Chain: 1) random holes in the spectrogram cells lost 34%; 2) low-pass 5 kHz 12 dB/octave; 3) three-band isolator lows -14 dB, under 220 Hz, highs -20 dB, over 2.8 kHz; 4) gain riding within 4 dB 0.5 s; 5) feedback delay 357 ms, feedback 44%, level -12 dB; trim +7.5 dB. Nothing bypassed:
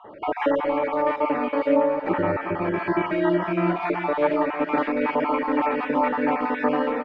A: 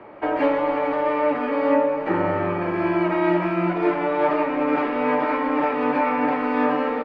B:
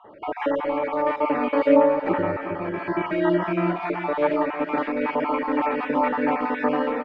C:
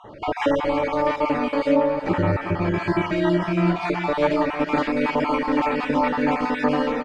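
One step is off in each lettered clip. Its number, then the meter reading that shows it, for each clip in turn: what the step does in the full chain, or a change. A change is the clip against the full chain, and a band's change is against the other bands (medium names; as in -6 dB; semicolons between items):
1, crest factor change -2.0 dB; 4, crest factor change +2.0 dB; 3, 125 Hz band +6.0 dB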